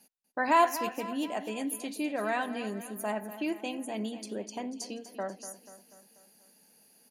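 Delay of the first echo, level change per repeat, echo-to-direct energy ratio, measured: 243 ms, -5.5 dB, -11.5 dB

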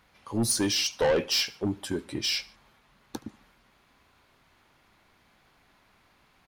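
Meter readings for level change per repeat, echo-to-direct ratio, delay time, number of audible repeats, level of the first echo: -5.5 dB, -21.5 dB, 73 ms, 2, -22.5 dB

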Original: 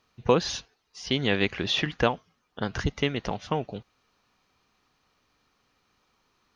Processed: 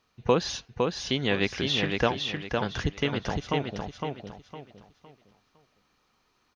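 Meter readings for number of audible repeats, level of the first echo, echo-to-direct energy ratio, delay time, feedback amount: 4, -4.0 dB, -3.5 dB, 509 ms, 31%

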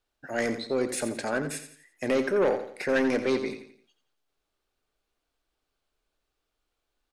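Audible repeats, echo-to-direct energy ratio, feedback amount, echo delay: 4, -9.5 dB, 39%, 86 ms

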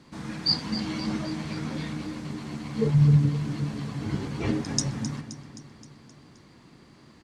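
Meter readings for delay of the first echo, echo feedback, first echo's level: 262 ms, 58%, -13.0 dB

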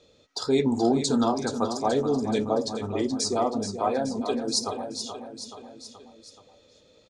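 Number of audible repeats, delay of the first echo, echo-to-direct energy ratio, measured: 4, 427 ms, -7.5 dB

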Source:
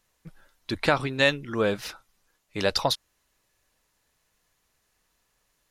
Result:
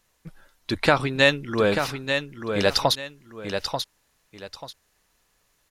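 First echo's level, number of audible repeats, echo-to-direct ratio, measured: -7.0 dB, 2, -6.5 dB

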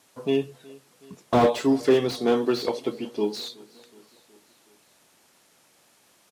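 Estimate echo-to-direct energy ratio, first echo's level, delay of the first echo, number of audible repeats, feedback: -21.0 dB, -23.0 dB, 371 ms, 3, 59%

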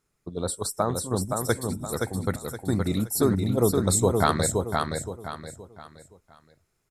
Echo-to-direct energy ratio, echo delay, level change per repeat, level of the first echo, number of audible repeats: -3.5 dB, 520 ms, -9.5 dB, -4.0 dB, 4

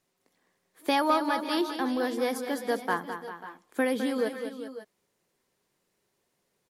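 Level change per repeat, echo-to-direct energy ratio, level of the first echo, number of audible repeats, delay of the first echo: no regular repeats, -6.5 dB, -9.0 dB, 3, 209 ms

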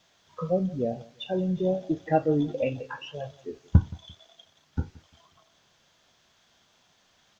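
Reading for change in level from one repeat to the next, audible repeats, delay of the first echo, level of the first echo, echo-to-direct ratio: -11.0 dB, 2, 173 ms, -22.0 dB, -21.5 dB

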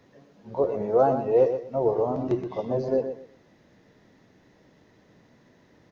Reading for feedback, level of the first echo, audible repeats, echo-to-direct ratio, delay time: 22%, -9.0 dB, 2, -9.0 dB, 123 ms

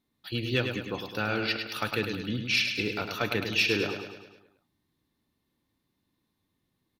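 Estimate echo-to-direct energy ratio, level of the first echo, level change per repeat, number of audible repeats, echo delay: -5.0 dB, -6.5 dB, -5.5 dB, 6, 104 ms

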